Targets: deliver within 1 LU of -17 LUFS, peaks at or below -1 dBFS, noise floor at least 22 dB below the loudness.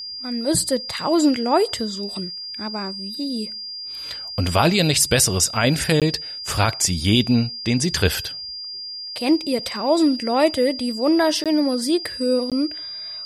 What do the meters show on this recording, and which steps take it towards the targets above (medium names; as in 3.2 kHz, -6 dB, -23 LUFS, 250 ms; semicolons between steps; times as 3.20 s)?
dropouts 3; longest dropout 17 ms; steady tone 4.8 kHz; tone level -30 dBFS; loudness -21.0 LUFS; peak level -3.5 dBFS; loudness target -17.0 LUFS
-> interpolate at 6.00/11.44/12.50 s, 17 ms; band-stop 4.8 kHz, Q 30; trim +4 dB; peak limiter -1 dBFS